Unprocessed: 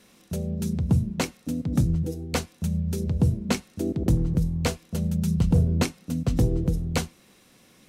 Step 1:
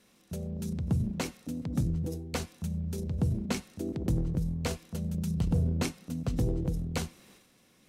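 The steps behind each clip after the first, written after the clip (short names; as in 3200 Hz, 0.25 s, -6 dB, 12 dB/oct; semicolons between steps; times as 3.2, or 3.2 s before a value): transient shaper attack +1 dB, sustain +8 dB; gain -8 dB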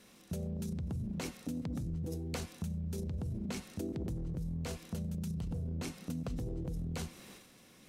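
limiter -28 dBFS, peak gain reduction 9.5 dB; compressor, threshold -39 dBFS, peak gain reduction 8 dB; gain +4 dB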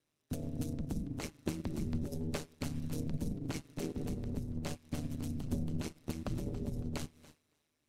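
thinning echo 0.279 s, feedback 32%, high-pass 180 Hz, level -5.5 dB; ring modulator 76 Hz; upward expander 2.5:1, over -55 dBFS; gain +7 dB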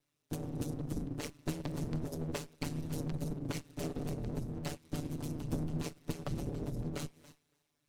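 minimum comb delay 6.9 ms; gain +1.5 dB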